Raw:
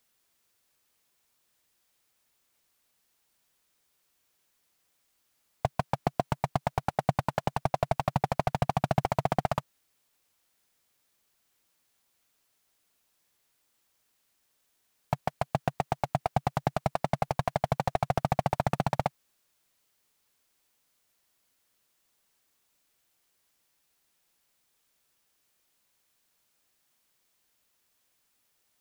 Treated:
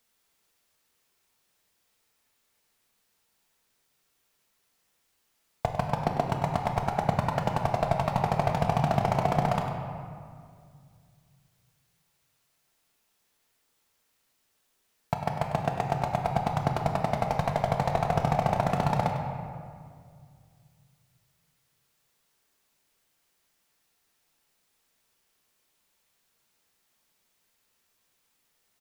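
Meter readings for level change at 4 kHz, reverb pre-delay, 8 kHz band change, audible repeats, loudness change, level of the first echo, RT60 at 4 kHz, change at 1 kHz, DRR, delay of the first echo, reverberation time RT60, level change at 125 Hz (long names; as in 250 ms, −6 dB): +1.5 dB, 4 ms, +0.5 dB, 1, +2.5 dB, −10.5 dB, 1.2 s, +2.5 dB, 1.0 dB, 99 ms, 2.1 s, +3.0 dB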